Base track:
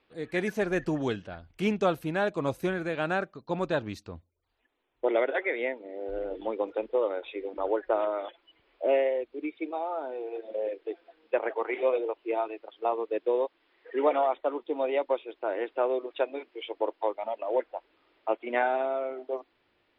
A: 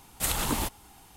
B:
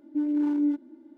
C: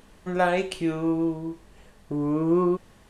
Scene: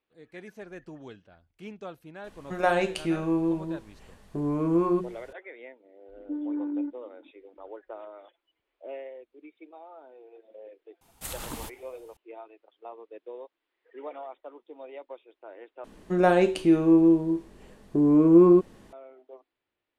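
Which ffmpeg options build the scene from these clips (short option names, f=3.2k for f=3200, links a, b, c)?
-filter_complex "[3:a]asplit=2[a][b];[0:a]volume=-15dB[c];[a]bandreject=f=60:t=h:w=6,bandreject=f=120:t=h:w=6,bandreject=f=180:t=h:w=6,bandreject=f=240:t=h:w=6,bandreject=f=300:t=h:w=6,bandreject=f=360:t=h:w=6,bandreject=f=420:t=h:w=6,bandreject=f=480:t=h:w=6[d];[2:a]lowpass=f=1.7k:w=0.5412,lowpass=f=1.7k:w=1.3066[e];[b]equalizer=f=310:t=o:w=1.6:g=9[f];[c]asplit=2[g][h];[g]atrim=end=15.844[i];[f]atrim=end=3.09,asetpts=PTS-STARTPTS,volume=-2dB[j];[h]atrim=start=18.926[k];[d]atrim=end=3.09,asetpts=PTS-STARTPTS,volume=-1dB,afade=t=in:d=0.004:c=hsin,afade=t=out:st=3.086:d=0.004:c=hsin,adelay=2240[l];[e]atrim=end=1.17,asetpts=PTS-STARTPTS,volume=-6dB,afade=t=in:d=0.004:c=hsin,afade=t=out:st=1.166:d=0.004:c=hsin,adelay=6140[m];[1:a]atrim=end=1.16,asetpts=PTS-STARTPTS,volume=-9.5dB,afade=t=in:d=0.004:c=hsin,afade=t=out:st=1.156:d=0.004:c=hsin,adelay=11010[n];[i][j]acrossfade=d=0.004:c1=hsin:c2=hsin[o];[o][k]acrossfade=d=0.004:c1=hsin:c2=hsin[p];[p][l][m][n]amix=inputs=4:normalize=0"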